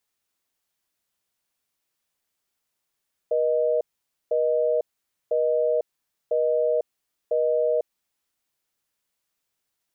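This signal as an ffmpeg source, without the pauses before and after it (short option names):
-f lavfi -i "aevalsrc='0.0794*(sin(2*PI*480*t)+sin(2*PI*620*t))*clip(min(mod(t,1),0.5-mod(t,1))/0.005,0,1)':d=4.91:s=44100"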